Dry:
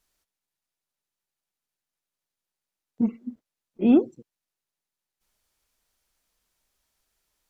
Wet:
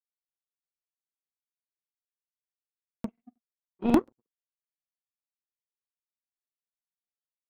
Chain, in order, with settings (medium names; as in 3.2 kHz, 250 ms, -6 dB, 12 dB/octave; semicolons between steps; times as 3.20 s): power-law waveshaper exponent 2; crackling interface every 0.18 s, samples 2048, repeat, from 0.43 s